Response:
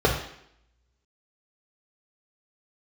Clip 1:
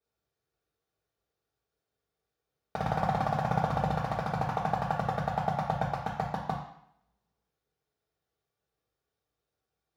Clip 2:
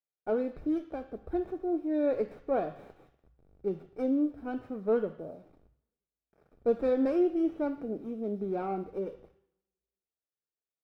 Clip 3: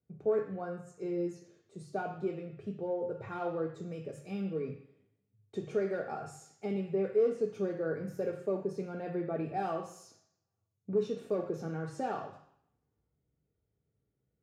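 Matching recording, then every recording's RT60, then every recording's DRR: 1; 0.70, 0.70, 0.70 seconds; −2.5, 9.5, 3.0 decibels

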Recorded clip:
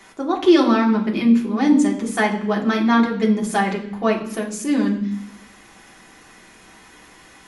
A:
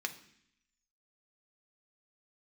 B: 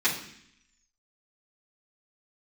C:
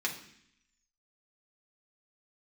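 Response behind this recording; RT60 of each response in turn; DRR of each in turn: C; 0.65, 0.65, 0.65 seconds; 4.5, −11.0, −2.0 decibels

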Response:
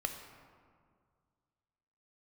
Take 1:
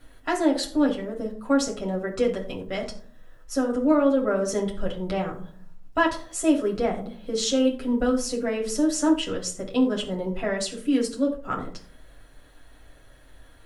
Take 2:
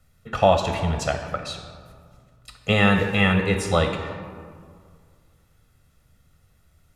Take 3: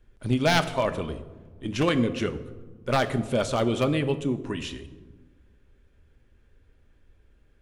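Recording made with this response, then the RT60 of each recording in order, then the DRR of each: 2; 0.50, 2.0, 1.4 seconds; −2.0, 5.0, 8.5 decibels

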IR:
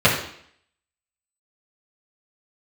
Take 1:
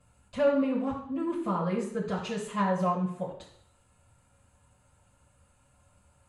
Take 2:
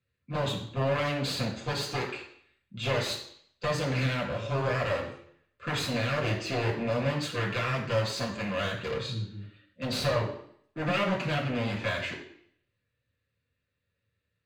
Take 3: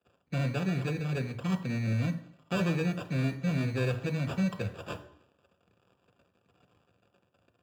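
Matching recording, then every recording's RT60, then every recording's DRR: 1; 0.65, 0.65, 0.65 seconds; −8.5, −3.0, 7.0 decibels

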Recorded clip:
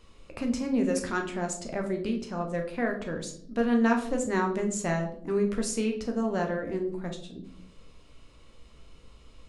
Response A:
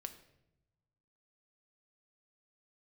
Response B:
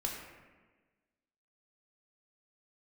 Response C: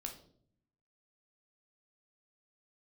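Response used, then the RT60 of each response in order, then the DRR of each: C; non-exponential decay, 1.3 s, 0.60 s; 7.5, −1.5, 2.5 decibels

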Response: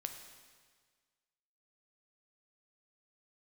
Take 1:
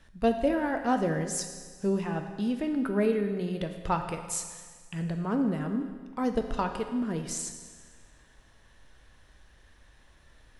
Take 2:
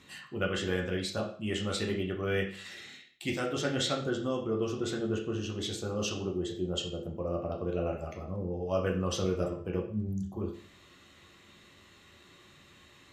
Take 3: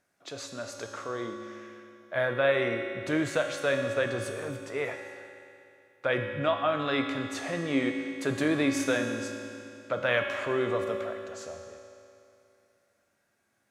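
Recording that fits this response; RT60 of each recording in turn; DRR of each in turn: 1; 1.6, 0.45, 2.7 seconds; 5.5, −1.0, 2.5 decibels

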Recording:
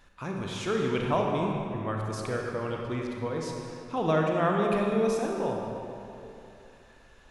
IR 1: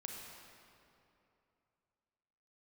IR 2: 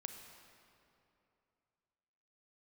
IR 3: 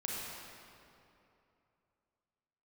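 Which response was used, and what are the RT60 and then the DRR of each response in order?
1; 2.8, 2.8, 2.9 seconds; −0.5, 5.0, −4.5 decibels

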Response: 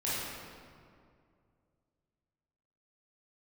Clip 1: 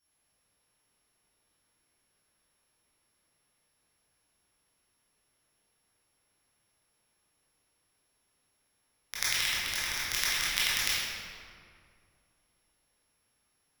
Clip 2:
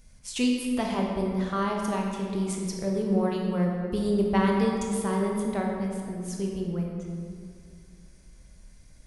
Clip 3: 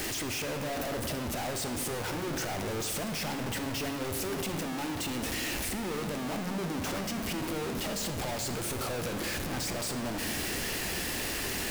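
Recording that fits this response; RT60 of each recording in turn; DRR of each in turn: 1; 2.3, 2.3, 2.3 seconds; −10.0, −0.5, 6.0 decibels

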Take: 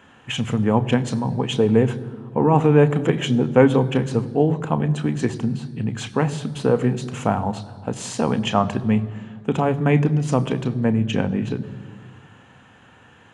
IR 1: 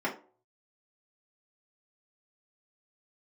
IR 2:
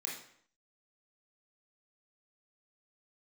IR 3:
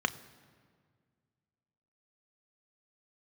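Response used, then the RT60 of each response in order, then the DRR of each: 3; non-exponential decay, 0.60 s, 1.9 s; −5.5, −3.5, 10.5 decibels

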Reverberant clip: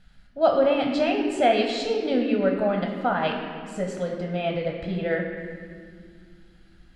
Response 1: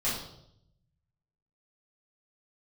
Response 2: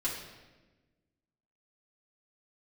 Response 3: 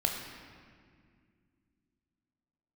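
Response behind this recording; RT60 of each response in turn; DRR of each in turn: 3; 0.75, 1.2, 2.1 seconds; −10.0, −7.5, 1.0 decibels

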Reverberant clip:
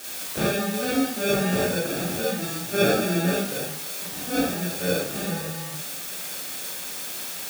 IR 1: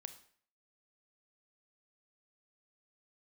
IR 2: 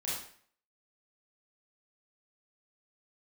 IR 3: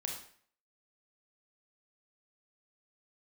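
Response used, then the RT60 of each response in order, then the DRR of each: 2; 0.55, 0.55, 0.55 seconds; 10.0, −7.5, 1.0 decibels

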